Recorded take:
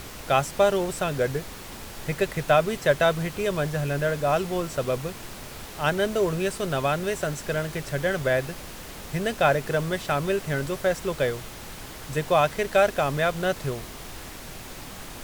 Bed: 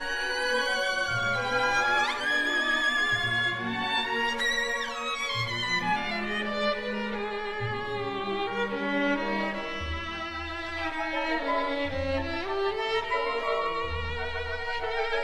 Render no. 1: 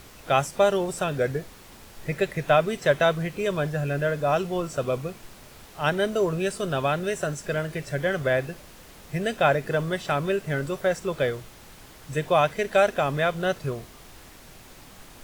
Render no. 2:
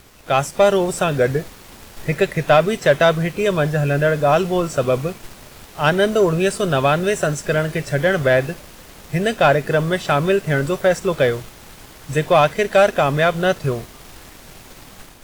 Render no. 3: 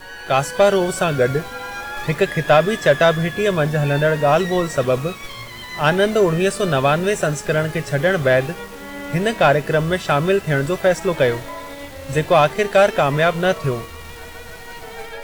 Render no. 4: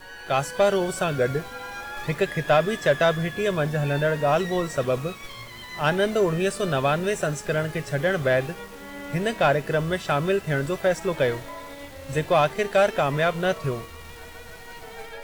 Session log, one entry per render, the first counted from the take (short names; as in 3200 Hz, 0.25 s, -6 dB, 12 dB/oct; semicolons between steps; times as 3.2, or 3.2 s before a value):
noise print and reduce 8 dB
AGC gain up to 5 dB; sample leveller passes 1
add bed -5 dB
gain -6 dB